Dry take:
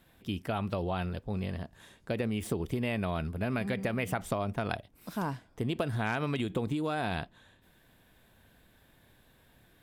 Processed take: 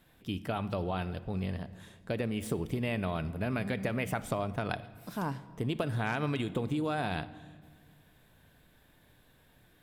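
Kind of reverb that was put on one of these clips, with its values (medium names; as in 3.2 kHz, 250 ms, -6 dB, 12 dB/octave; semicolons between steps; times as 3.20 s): simulated room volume 2300 m³, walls mixed, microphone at 0.42 m; trim -1 dB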